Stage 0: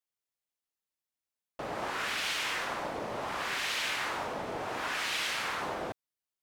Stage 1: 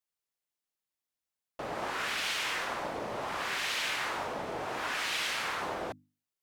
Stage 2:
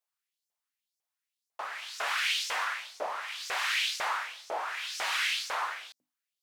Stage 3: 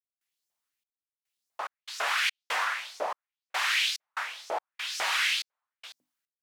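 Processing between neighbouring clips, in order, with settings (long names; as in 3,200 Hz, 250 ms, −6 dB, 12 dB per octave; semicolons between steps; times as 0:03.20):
mains-hum notches 50/100/150/200/250/300 Hz
auto-filter high-pass saw up 2 Hz 550–6,300 Hz
gate pattern ".xxx..xx.xx" 72 BPM −60 dB; level +3 dB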